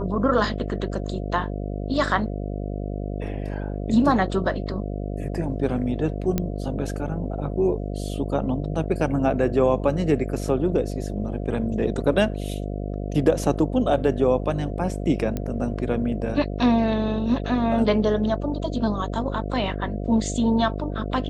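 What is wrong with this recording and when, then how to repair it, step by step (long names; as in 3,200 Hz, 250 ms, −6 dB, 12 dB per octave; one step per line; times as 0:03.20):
mains buzz 50 Hz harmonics 14 −29 dBFS
0:06.38: click −10 dBFS
0:15.37: click −15 dBFS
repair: click removal
hum removal 50 Hz, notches 14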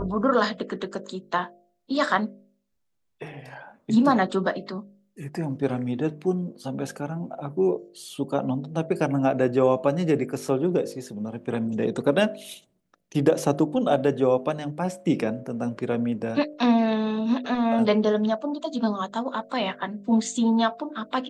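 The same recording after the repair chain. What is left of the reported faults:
none of them is left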